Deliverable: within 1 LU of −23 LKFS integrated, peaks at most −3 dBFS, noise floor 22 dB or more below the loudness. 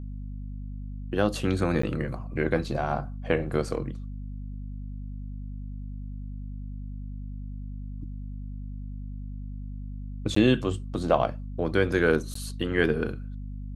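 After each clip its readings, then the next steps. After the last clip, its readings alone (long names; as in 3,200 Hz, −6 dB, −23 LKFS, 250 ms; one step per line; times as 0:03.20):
number of dropouts 3; longest dropout 14 ms; mains hum 50 Hz; hum harmonics up to 250 Hz; level of the hum −34 dBFS; integrated loudness −30.0 LKFS; sample peak −8.5 dBFS; target loudness −23.0 LKFS
→ repair the gap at 0:01.82/0:10.35/0:12.34, 14 ms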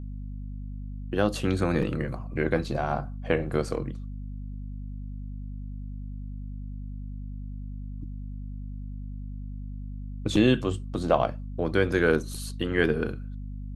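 number of dropouts 0; mains hum 50 Hz; hum harmonics up to 250 Hz; level of the hum −33 dBFS
→ hum removal 50 Hz, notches 5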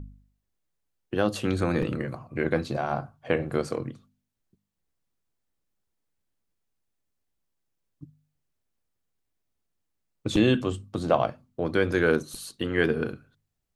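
mains hum none found; integrated loudness −27.5 LKFS; sample peak −8.5 dBFS; target loudness −23.0 LKFS
→ level +4.5 dB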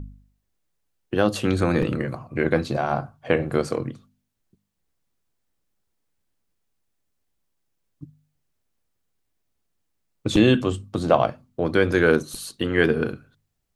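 integrated loudness −23.0 LKFS; sample peak −4.0 dBFS; background noise floor −75 dBFS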